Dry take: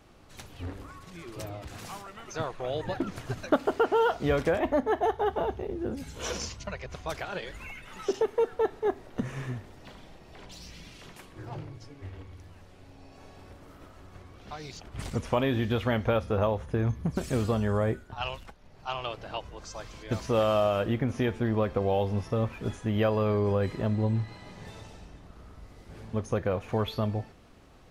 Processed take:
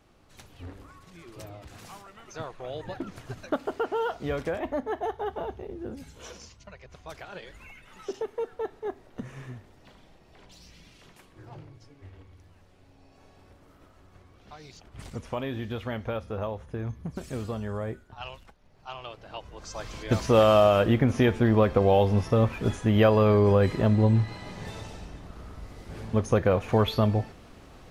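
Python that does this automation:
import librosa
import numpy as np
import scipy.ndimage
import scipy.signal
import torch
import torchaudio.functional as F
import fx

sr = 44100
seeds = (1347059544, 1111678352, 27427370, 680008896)

y = fx.gain(x, sr, db=fx.line((6.03, -4.5), (6.37, -12.5), (7.36, -6.0), (19.24, -6.0), (19.94, 6.0)))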